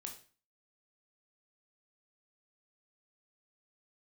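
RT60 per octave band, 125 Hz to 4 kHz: 0.45, 0.45, 0.40, 0.40, 0.40, 0.35 s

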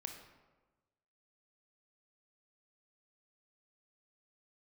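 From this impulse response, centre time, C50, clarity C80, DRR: 29 ms, 6.0 dB, 8.0 dB, 4.0 dB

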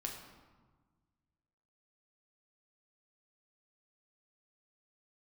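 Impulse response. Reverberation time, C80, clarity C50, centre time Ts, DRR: 1.4 s, 6.5 dB, 5.0 dB, 42 ms, 0.0 dB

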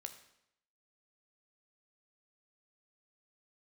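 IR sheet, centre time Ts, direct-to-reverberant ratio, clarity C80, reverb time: 11 ms, 7.0 dB, 13.0 dB, 0.80 s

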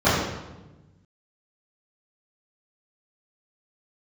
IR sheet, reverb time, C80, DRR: 1.1 s, 2.5 dB, -16.5 dB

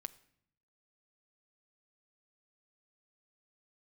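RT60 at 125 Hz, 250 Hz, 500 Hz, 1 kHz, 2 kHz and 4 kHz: 1.0, 0.95, 0.70, 0.65, 0.65, 0.55 s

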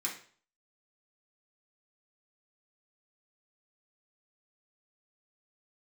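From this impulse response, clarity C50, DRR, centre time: 7.5 dB, -4.5 dB, 23 ms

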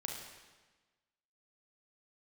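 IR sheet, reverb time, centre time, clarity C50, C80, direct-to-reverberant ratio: 1.3 s, 59 ms, 2.5 dB, 4.5 dB, -0.5 dB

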